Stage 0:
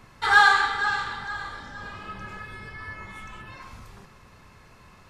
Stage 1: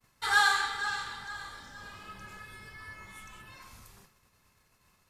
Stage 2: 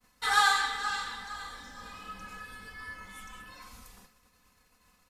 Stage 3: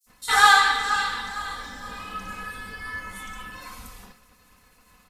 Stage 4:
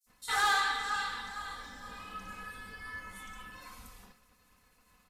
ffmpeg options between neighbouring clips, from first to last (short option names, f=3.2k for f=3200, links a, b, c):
-af "agate=range=-33dB:threshold=-44dB:ratio=3:detection=peak,aemphasis=mode=production:type=75fm,volume=-9dB"
-af "aecho=1:1:4:0.72"
-filter_complex "[0:a]acrossover=split=5500[a][b];[a]adelay=60[c];[c][b]amix=inputs=2:normalize=0,volume=9dB"
-af "asoftclip=type=tanh:threshold=-13.5dB,volume=-9dB"